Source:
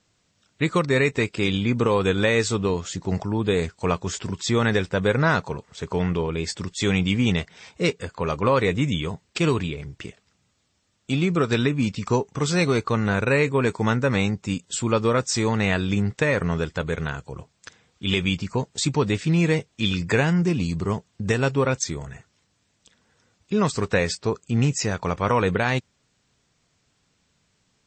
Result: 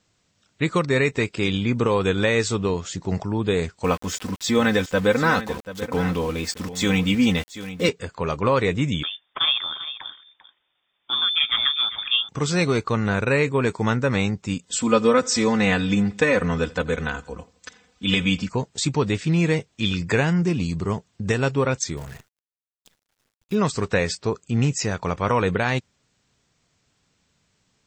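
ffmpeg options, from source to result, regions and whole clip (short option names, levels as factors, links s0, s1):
-filter_complex "[0:a]asettb=1/sr,asplit=3[s0][s1][s2];[s0]atrim=end=3.844[s3];[s1]atrim=start=3.84:end=7.89,asetpts=PTS-STARTPTS,afade=t=in:d=0.004:c=qsin,afade=t=out:st=4.046:d=0.004:c=qsin,aecho=1:1:3.9:0.74,atrim=end_sample=178605,aeval=exprs='val(0)*gte(abs(val(0)),0.0178)':c=same,aecho=1:1:736:0.211,atrim=end_sample=178605[s4];[s2]atrim=start=7.886[s5];[s3][s4]acrossfade=d=0.004:c1=hsin:c2=qsin[s6];[s6][s5]acrossfade=d=0.004:c1=qsin:c2=hsin,asettb=1/sr,asplit=3[s7][s8][s9];[s7]atrim=end=9.034[s10];[s8]atrim=start=9.03:end=12.29,asetpts=PTS-STARTPTS,afade=t=in:d=0.004:c=qsin,afade=t=out:st=3.256:d=0.004:c=qsin,equalizer=f=87:w=2.5:g=-13,aecho=1:1:396:0.2,atrim=end_sample=143766,lowpass=f=3100:t=q:w=0.5098,lowpass=f=3100:t=q:w=0.6013,lowpass=f=3100:t=q:w=0.9,lowpass=f=3100:t=q:w=2.563,afreqshift=-3700[s11];[s9]atrim=start=12.286[s12];[s10][s11]acrossfade=d=0.004:c1=hsin:c2=qsin[s13];[s13][s12]acrossfade=d=0.004:c1=qsin:c2=hsin,asettb=1/sr,asplit=3[s14][s15][s16];[s14]atrim=end=14.654[s17];[s15]atrim=start=14.65:end=18.49,asetpts=PTS-STARTPTS,afade=t=in:d=0.004:c=qsin,afade=t=out:st=3.836:d=0.004:c=qsin,aecho=1:1:4:0.94,atrim=end_sample=169344,aecho=1:1:84|168|252:0.0708|0.0347|0.017,atrim=end_sample=169344[s18];[s16]atrim=start=18.486[s19];[s17][s18]acrossfade=d=0.004:c1=hsin:c2=qsin[s20];[s20][s19]acrossfade=d=0.004:c1=qsin:c2=hsin,asettb=1/sr,asplit=3[s21][s22][s23];[s21]atrim=end=21.974[s24];[s22]atrim=start=21.97:end=23.55,asetpts=PTS-STARTPTS,afade=t=in:d=0.004:c=qsin,afade=t=out:st=1.576:d=0.004:c=qsin,agate=range=0.0224:threshold=0.00112:ratio=3:release=100:detection=peak,acrusher=bits=8:dc=4:mix=0:aa=0.000001[s25];[s23]atrim=start=23.546[s26];[s24][s25]acrossfade=d=0.004:c1=hsin:c2=qsin[s27];[s27][s26]acrossfade=d=0.004:c1=qsin:c2=hsin"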